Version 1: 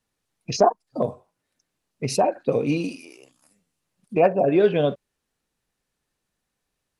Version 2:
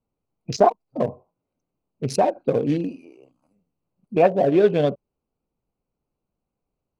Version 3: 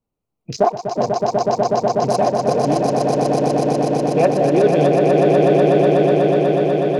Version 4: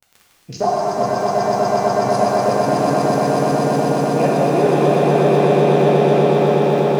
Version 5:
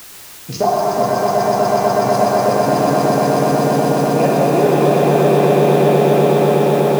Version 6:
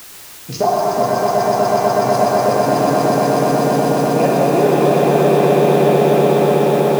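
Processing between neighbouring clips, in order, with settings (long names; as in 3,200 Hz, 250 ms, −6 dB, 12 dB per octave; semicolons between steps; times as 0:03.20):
adaptive Wiener filter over 25 samples; level +1.5 dB
echo that builds up and dies away 123 ms, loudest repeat 8, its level −4 dB
surface crackle 30 per second −25 dBFS; reverb with rising layers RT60 3.2 s, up +7 semitones, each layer −8 dB, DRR −5 dB; level −5.5 dB
in parallel at +0.5 dB: downward compressor, threshold −22 dBFS, peak gain reduction 12 dB; on the sum: bit-depth reduction 6 bits, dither triangular; level −1 dB
mains-hum notches 50/100/150/200 Hz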